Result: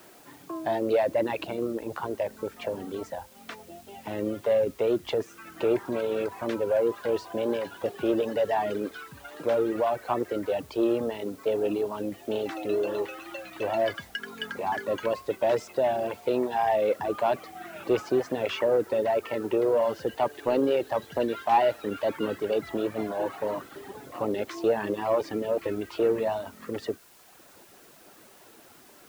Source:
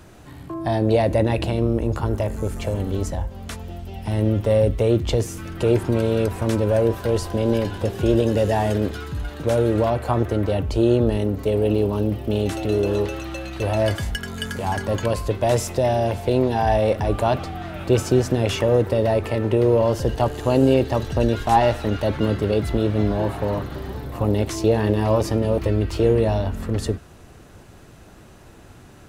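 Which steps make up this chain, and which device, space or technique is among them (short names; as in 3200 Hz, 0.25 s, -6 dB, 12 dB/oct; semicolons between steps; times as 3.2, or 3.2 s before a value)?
reverb removal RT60 1.1 s; tape answering machine (BPF 320–3100 Hz; soft clip -11.5 dBFS, distortion -23 dB; wow and flutter; white noise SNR 28 dB); gain -2 dB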